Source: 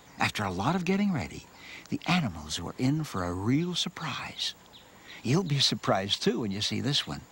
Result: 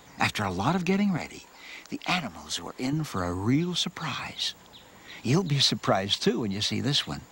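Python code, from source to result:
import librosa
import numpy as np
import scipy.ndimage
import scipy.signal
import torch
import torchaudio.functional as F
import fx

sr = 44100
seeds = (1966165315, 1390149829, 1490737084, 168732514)

y = fx.peak_eq(x, sr, hz=110.0, db=-15.0, octaves=1.6, at=(1.17, 2.93))
y = F.gain(torch.from_numpy(y), 2.0).numpy()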